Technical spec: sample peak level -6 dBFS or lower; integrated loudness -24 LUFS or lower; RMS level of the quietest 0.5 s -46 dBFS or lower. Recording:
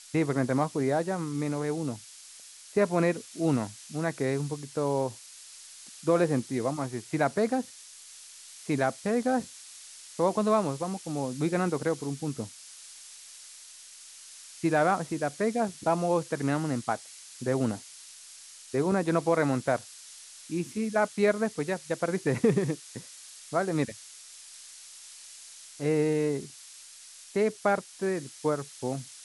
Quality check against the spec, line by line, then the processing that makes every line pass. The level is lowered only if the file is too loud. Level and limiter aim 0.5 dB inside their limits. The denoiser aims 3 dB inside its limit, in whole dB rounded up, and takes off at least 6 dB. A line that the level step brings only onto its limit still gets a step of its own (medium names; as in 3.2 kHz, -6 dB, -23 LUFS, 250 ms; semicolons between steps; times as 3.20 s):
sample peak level -11.0 dBFS: pass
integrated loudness -29.0 LUFS: pass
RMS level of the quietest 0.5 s -49 dBFS: pass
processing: none needed